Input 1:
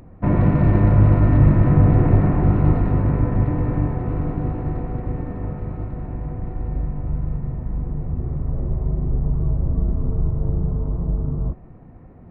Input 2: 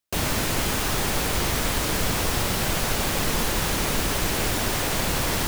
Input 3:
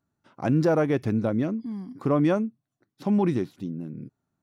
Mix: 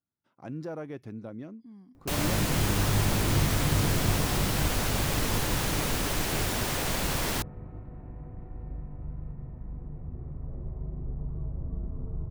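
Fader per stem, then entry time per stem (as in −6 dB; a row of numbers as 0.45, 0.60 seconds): −14.0, −5.0, −15.5 decibels; 1.95, 1.95, 0.00 seconds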